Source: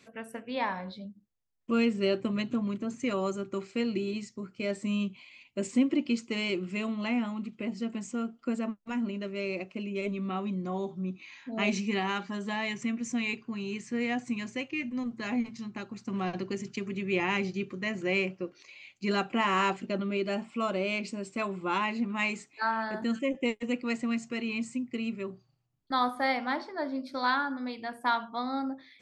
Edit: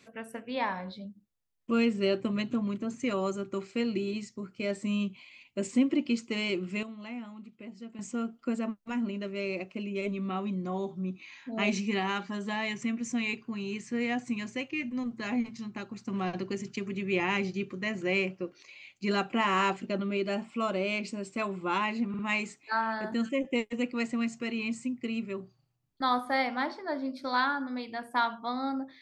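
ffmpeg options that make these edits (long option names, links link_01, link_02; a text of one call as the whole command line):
ffmpeg -i in.wav -filter_complex "[0:a]asplit=5[link_01][link_02][link_03][link_04][link_05];[link_01]atrim=end=6.832[link_06];[link_02]atrim=start=6.828:end=7.992,asetpts=PTS-STARTPTS,volume=-10.5dB[link_07];[link_03]atrim=start=7.988:end=22.142[link_08];[link_04]atrim=start=22.088:end=22.142[link_09];[link_05]atrim=start=22.088[link_10];[link_06][link_07]acrossfade=duration=0.004:curve1=hsin:curve2=hsin[link_11];[link_11][link_08]acrossfade=duration=0.004:curve1=hsin:curve2=hsin[link_12];[link_12][link_09]acrossfade=duration=0.004:curve1=hsin:curve2=hsin[link_13];[link_13][link_10]acrossfade=duration=0.004:curve1=hsin:curve2=hsin" out.wav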